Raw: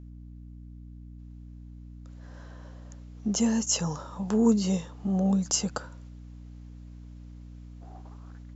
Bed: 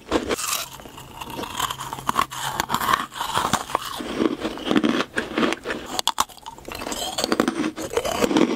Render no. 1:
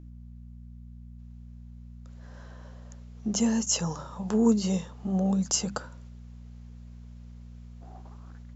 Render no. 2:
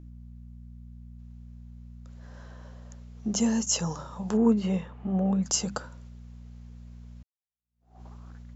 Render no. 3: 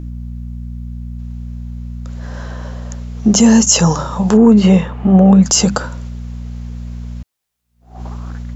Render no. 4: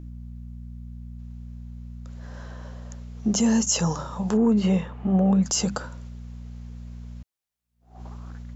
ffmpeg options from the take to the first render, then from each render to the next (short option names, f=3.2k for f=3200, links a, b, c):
-af "bandreject=f=50:t=h:w=6,bandreject=f=100:t=h:w=6,bandreject=f=150:t=h:w=6,bandreject=f=200:t=h:w=6,bandreject=f=250:t=h:w=6,bandreject=f=300:t=h:w=6"
-filter_complex "[0:a]asettb=1/sr,asplit=3[a][b][c];[a]atrim=end=4.374[d];[b]atrim=start=4.37:end=5.46,asetpts=PTS-STARTPTS,afade=t=in:d=0.004:c=qsin,afade=t=out:st=1.086:d=0.004:c=qsin,highshelf=f=3.6k:t=q:w=1.5:g=-13.5[e];[c]atrim=start=5.456[f];[d][e]acrossfade=d=0.004:c1=hsin:c2=qsin[g];[g][f]acrossfade=d=0.004:c1=qsin:c2=hsin,asplit=2[h][i];[h]atrim=end=7.23,asetpts=PTS-STARTPTS,afade=t=out:st=7.226:d=0.004:c=hsin[j];[i]atrim=start=7.23,asetpts=PTS-STARTPTS,afade=t=in:d=0.79:c=exp[k];[j][k]concat=n=2:v=0:a=1"
-af "acontrast=63,alimiter=level_in=12.5dB:limit=-1dB:release=50:level=0:latency=1"
-af "volume=-12dB"